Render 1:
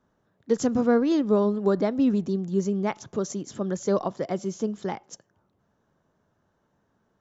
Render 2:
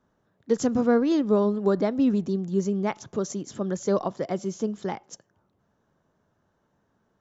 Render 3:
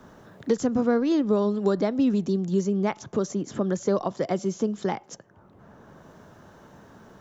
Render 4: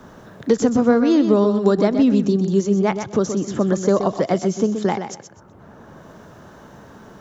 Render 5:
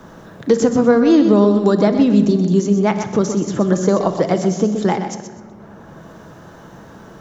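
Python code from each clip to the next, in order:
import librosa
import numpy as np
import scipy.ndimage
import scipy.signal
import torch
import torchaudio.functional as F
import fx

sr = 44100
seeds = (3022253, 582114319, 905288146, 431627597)

y1 = x
y2 = fx.band_squash(y1, sr, depth_pct=70)
y3 = fx.echo_feedback(y2, sr, ms=126, feedback_pct=21, wet_db=-8.5)
y3 = y3 * 10.0 ** (6.5 / 20.0)
y4 = fx.room_shoebox(y3, sr, seeds[0], volume_m3=1900.0, walls='mixed', distance_m=0.68)
y4 = y4 * 10.0 ** (2.5 / 20.0)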